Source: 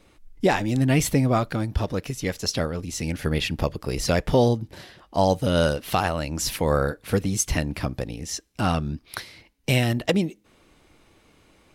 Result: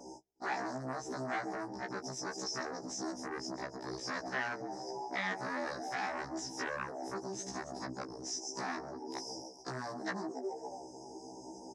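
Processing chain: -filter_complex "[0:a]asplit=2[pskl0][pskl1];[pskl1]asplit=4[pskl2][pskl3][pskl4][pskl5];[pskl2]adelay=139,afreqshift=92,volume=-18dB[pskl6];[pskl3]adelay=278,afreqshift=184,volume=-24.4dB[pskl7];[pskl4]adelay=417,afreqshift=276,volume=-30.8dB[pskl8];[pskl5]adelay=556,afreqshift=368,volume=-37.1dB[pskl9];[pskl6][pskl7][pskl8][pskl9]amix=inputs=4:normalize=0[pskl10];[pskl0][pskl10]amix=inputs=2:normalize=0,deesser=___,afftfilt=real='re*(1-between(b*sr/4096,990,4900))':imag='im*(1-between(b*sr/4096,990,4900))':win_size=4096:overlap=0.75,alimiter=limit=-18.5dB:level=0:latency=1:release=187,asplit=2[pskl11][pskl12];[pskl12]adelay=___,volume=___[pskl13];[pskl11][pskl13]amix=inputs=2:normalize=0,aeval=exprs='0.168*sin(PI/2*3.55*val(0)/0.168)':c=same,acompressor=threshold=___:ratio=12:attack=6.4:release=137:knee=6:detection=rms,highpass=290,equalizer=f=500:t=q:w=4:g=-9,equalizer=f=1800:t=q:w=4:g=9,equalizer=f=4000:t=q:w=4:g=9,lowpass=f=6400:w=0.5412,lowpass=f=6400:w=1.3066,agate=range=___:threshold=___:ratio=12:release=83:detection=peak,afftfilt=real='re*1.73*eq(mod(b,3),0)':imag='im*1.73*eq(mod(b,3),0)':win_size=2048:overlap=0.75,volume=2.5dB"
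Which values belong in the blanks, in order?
0.7, 13, -9dB, -34dB, -18dB, -59dB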